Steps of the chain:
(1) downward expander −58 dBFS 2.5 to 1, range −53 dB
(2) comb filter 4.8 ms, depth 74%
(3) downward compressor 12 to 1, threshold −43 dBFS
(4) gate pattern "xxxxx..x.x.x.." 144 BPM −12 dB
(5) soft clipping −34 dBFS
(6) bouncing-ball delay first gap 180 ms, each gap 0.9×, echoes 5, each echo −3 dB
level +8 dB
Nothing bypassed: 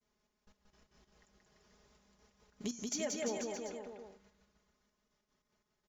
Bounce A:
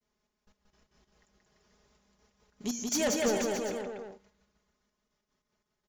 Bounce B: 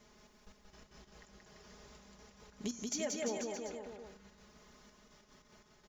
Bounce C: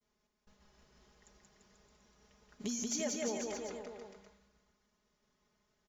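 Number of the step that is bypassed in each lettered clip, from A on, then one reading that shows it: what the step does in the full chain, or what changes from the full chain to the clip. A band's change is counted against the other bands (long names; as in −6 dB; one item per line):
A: 3, average gain reduction 11.0 dB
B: 1, change in momentary loudness spread +7 LU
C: 4, 8 kHz band +2.5 dB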